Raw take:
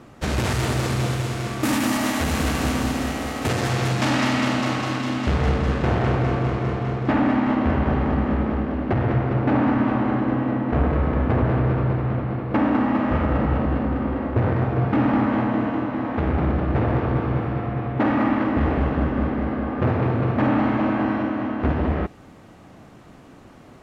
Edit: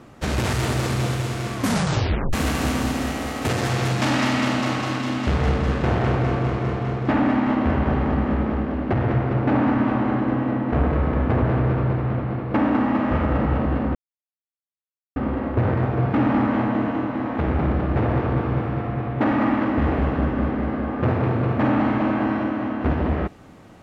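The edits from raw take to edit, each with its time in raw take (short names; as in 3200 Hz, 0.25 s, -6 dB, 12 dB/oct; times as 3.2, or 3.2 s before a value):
1.55 tape stop 0.78 s
13.95 insert silence 1.21 s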